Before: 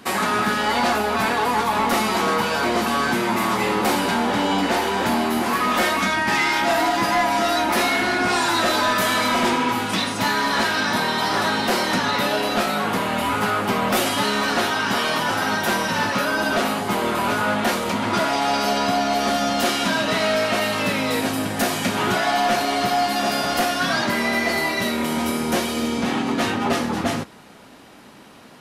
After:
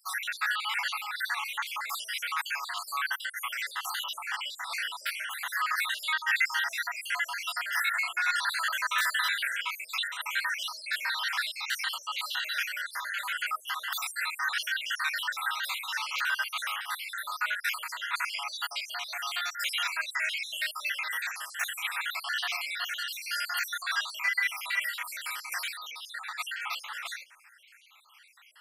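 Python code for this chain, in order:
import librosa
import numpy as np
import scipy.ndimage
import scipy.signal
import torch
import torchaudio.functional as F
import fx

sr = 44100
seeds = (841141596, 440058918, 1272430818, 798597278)

y = fx.spec_dropout(x, sr, seeds[0], share_pct=66)
y = scipy.signal.sosfilt(scipy.signal.butter(4, 1400.0, 'highpass', fs=sr, output='sos'), y)
y = fx.peak_eq(y, sr, hz=6100.0, db=-6.5, octaves=1.4)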